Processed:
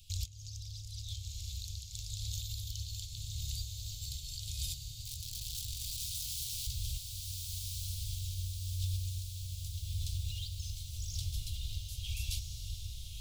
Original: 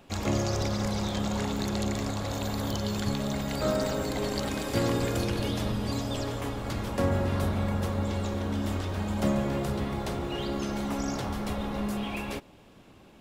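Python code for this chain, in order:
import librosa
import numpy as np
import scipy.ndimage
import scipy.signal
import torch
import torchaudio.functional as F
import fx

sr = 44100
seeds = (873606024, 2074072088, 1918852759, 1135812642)

y = fx.over_compress(x, sr, threshold_db=-34.0, ratio=-0.5)
y = fx.overflow_wrap(y, sr, gain_db=33.5, at=(5.03, 6.67))
y = scipy.signal.sosfilt(scipy.signal.cheby2(4, 40, [190.0, 1900.0], 'bandstop', fs=sr, output='sos'), y)
y = fx.echo_diffused(y, sr, ms=1326, feedback_pct=57, wet_db=-3.0)
y = y * librosa.db_to_amplitude(1.0)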